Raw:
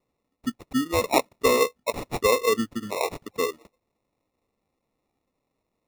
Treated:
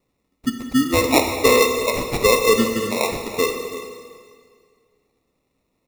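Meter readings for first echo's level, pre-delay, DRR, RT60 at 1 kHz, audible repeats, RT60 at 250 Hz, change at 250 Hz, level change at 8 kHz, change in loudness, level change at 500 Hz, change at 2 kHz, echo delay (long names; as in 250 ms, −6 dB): −14.5 dB, 6 ms, 3.5 dB, 1.9 s, 1, 2.0 s, +7.5 dB, +8.5 dB, +6.5 dB, +6.0 dB, +8.0 dB, 333 ms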